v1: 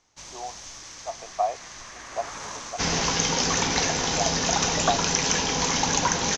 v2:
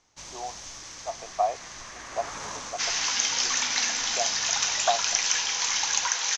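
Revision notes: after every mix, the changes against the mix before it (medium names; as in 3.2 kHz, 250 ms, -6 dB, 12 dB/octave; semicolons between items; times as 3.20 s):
second sound: add high-pass 1.4 kHz 12 dB/octave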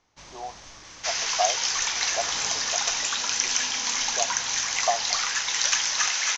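first sound: add distance through air 110 m; second sound: entry -1.75 s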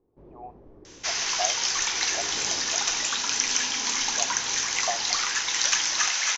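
speech -6.0 dB; first sound: add resonant low-pass 400 Hz, resonance Q 3.5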